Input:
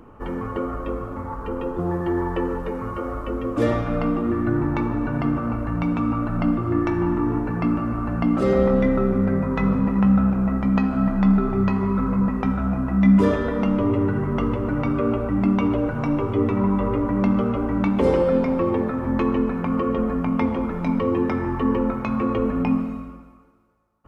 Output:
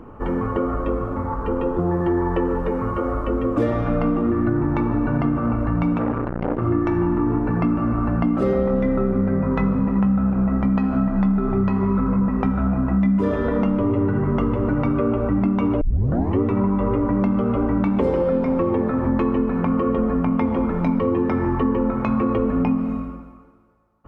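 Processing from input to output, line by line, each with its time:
5.98–6.62 s: transformer saturation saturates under 750 Hz
15.81 s: tape start 0.59 s
whole clip: compression, threshold -22 dBFS; treble shelf 2.7 kHz -10.5 dB; trim +6 dB

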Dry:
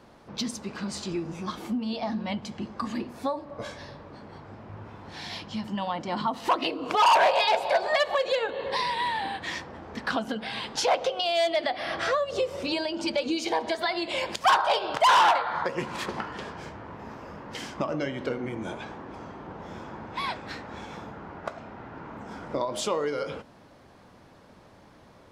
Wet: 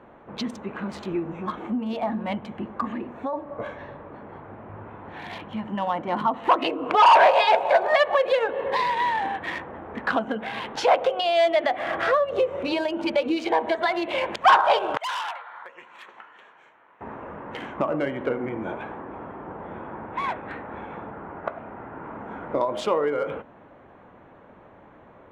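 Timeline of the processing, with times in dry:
2.91–3.33 s: compression 5:1, threshold -29 dBFS
14.97–17.01 s: differentiator
19.02–22.04 s: distance through air 110 m
whole clip: local Wiener filter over 9 samples; tone controls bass -6 dB, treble -14 dB; trim +5.5 dB

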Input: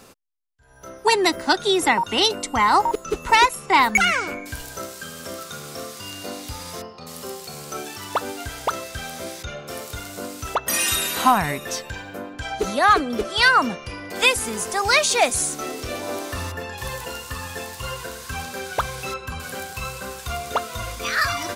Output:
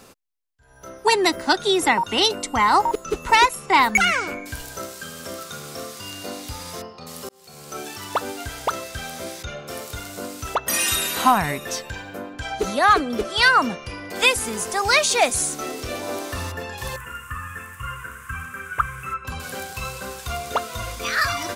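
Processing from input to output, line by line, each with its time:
7.29–7.87 s: fade in
16.96–19.25 s: FFT filter 120 Hz 0 dB, 810 Hz -19 dB, 1.2 kHz +7 dB, 2.8 kHz -6 dB, 4.2 kHz -27 dB, 8.1 kHz -7 dB

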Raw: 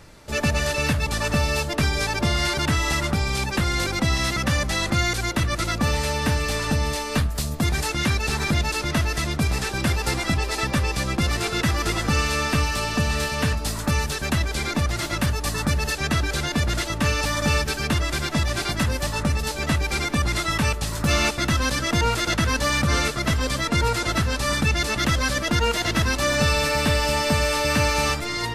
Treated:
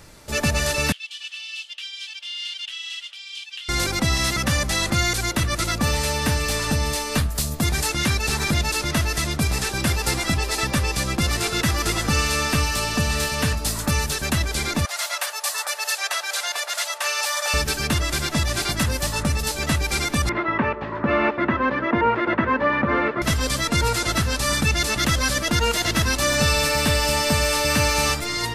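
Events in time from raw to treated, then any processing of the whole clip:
0.92–3.69 s: ladder band-pass 3.2 kHz, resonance 80%
14.85–17.54 s: steep high-pass 580 Hz
20.29–23.22 s: cabinet simulation 140–2200 Hz, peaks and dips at 150 Hz -5 dB, 240 Hz +5 dB, 370 Hz +8 dB, 560 Hz +5 dB, 1 kHz +8 dB, 1.8 kHz +3 dB
whole clip: treble shelf 5.2 kHz +7.5 dB

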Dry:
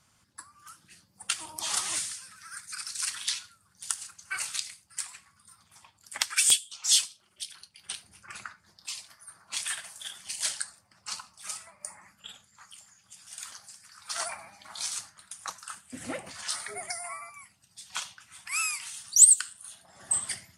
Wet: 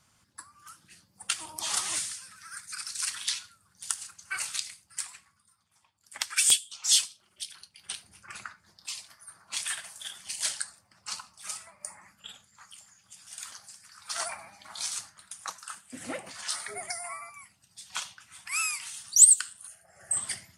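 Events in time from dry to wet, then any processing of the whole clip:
5.05–6.44 s: dip -12 dB, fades 0.47 s
15.42–16.66 s: high-pass 160 Hz 6 dB/octave
19.67–20.17 s: static phaser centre 1 kHz, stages 6

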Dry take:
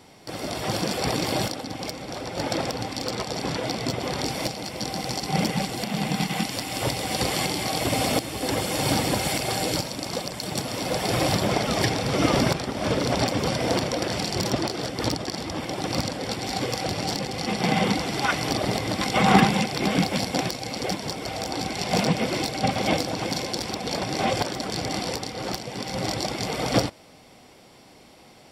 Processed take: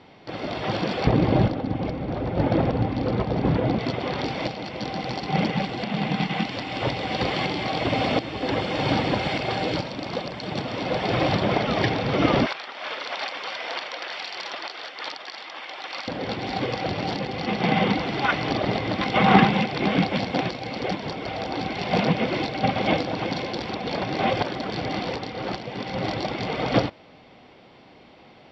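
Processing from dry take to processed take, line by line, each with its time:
1.07–3.79 s: tilt EQ -3.5 dB/octave
12.46–16.08 s: high-pass 1.1 kHz
whole clip: low-pass 3.8 kHz 24 dB/octave; bass shelf 63 Hz -5.5 dB; trim +1.5 dB

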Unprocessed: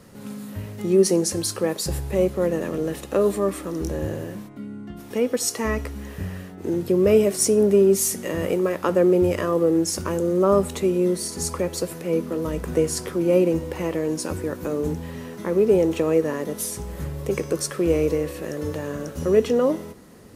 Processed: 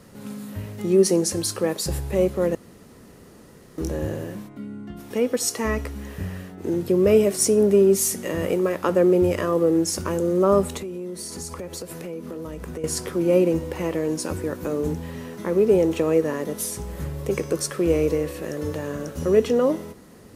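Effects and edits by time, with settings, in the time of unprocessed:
2.55–3.78 s: room tone
10.77–12.84 s: compression 5:1, threshold -30 dBFS

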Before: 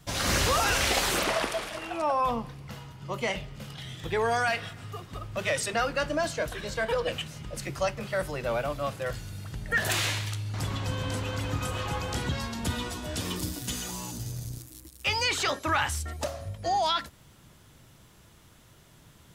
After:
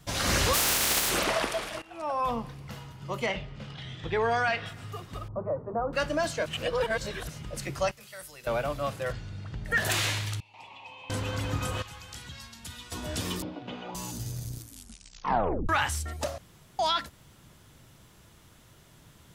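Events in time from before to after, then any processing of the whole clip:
0.53–1.09 s: spectral contrast reduction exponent 0.19
1.82–2.60 s: fade in equal-power, from -20.5 dB
3.26–4.66 s: low-pass 4.3 kHz
5.28–5.93 s: elliptic low-pass 1.1 kHz, stop band 70 dB
6.46–7.29 s: reverse
7.91–8.47 s: pre-emphasis filter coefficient 0.9
9.12–9.65 s: distance through air 140 m
10.40–11.10 s: two resonant band-passes 1.5 kHz, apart 1.5 oct
11.82–12.92 s: amplifier tone stack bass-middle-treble 5-5-5
13.42–13.95 s: cabinet simulation 200–2700 Hz, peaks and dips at 560 Hz +8 dB, 810 Hz +7 dB, 1.8 kHz -9 dB
14.58 s: tape stop 1.11 s
16.38–16.79 s: room tone

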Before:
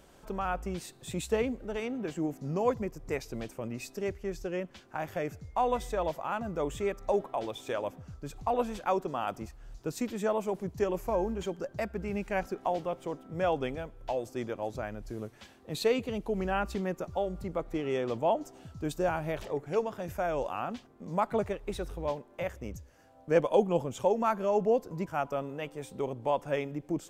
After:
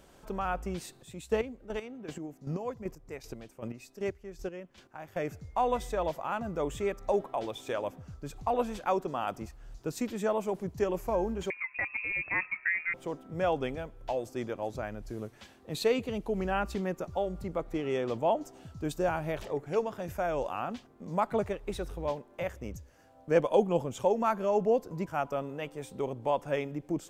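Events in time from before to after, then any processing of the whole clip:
0.93–5.22 s: square tremolo 2.6 Hz, depth 65%, duty 25%
11.50–12.94 s: frequency inversion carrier 2.6 kHz

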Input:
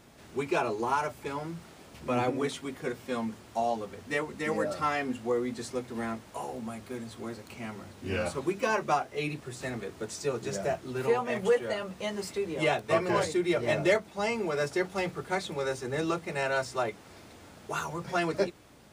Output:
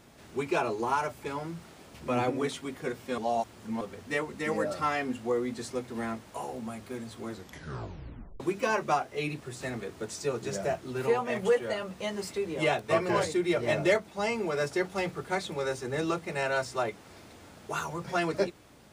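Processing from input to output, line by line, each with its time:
3.18–3.81 s: reverse
7.27 s: tape stop 1.13 s

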